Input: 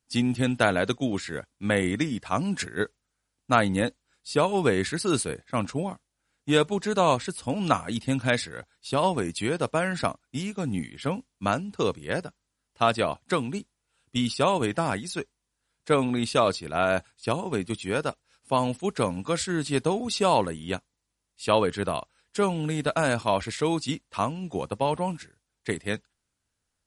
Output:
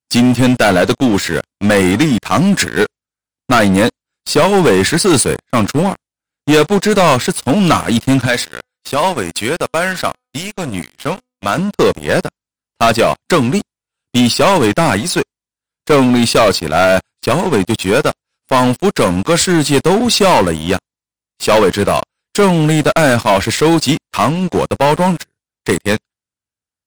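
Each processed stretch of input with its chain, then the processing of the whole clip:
8.26–11.58 low shelf 460 Hz -7.5 dB + resonator 250 Hz, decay 0.43 s, mix 40%
whole clip: HPF 67 Hz 12 dB/oct; sample leveller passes 5

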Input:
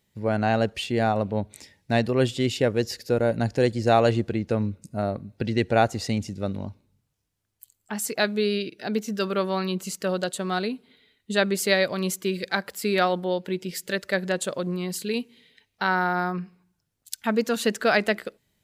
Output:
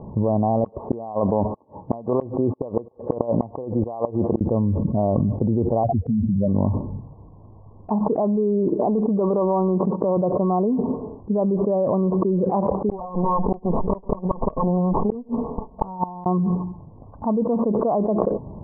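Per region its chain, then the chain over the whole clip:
0.64–4.41 tilt +4 dB/oct + compressor 10:1, threshold -27 dBFS + flipped gate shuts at -20 dBFS, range -35 dB
5.83–6.48 spectral contrast raised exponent 3.1 + bell 250 Hz +5.5 dB 2.1 oct
8.68–10.17 transient shaper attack -9 dB, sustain 0 dB + HPF 300 Hz 6 dB/oct
12.89–16.26 minimum comb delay 4.5 ms + LPF 3400 Hz + flipped gate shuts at -20 dBFS, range -41 dB
whole clip: Chebyshev low-pass 1100 Hz, order 8; fast leveller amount 100%; gain -2.5 dB

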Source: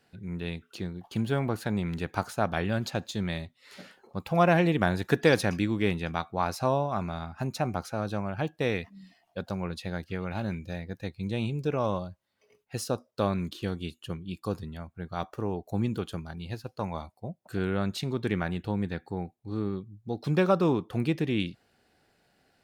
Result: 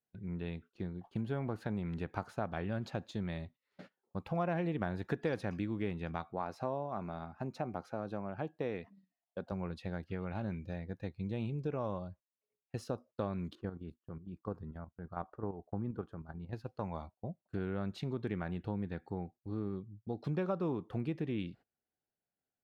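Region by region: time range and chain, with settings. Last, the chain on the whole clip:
6.33–9.52 HPF 320 Hz 6 dB/oct + tilt shelf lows +3.5 dB, about 810 Hz
13.55–16.53 resonant high shelf 2000 Hz -10.5 dB, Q 1.5 + level quantiser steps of 10 dB
whole clip: LPF 1500 Hz 6 dB/oct; gate -48 dBFS, range -24 dB; compressor 2.5:1, threshold -31 dBFS; gain -3.5 dB

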